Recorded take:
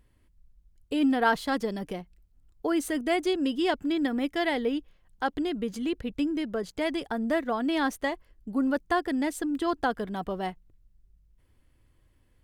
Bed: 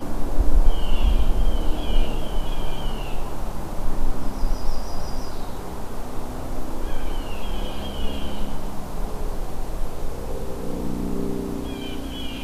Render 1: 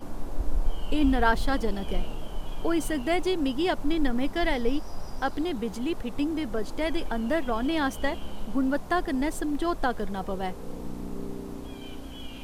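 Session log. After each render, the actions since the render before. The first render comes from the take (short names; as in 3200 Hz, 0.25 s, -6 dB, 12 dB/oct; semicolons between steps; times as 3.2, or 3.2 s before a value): add bed -9.5 dB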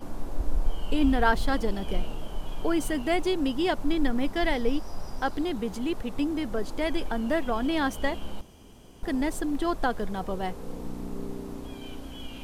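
8.41–9.03 room tone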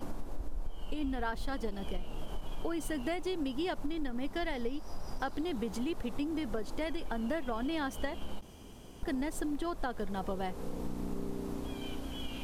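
compressor, threshold -31 dBFS, peak gain reduction 15 dB; ending taper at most 460 dB/s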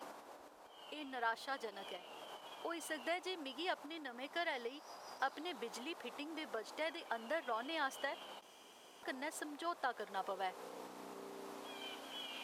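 HPF 670 Hz 12 dB/oct; high shelf 7100 Hz -7 dB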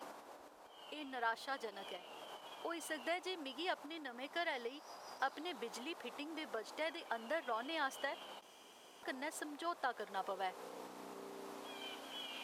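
nothing audible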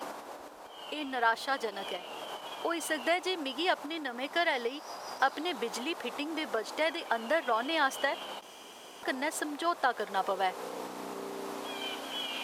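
gain +11 dB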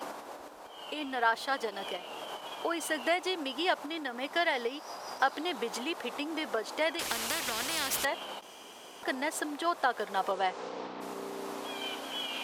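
6.99–8.05 spectral compressor 4:1; 10.31–11 LPF 9700 Hz -> 4200 Hz 24 dB/oct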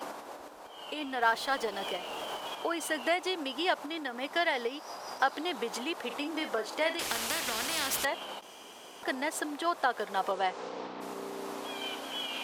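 1.22–2.55 G.711 law mismatch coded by mu; 6.06–7.92 doubler 41 ms -9 dB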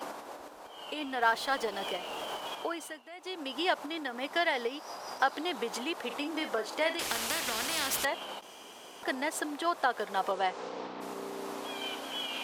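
2.56–3.58 dip -20.5 dB, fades 0.46 s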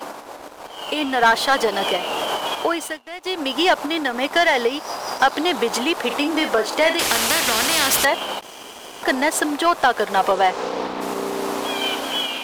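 sample leveller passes 2; AGC gain up to 7 dB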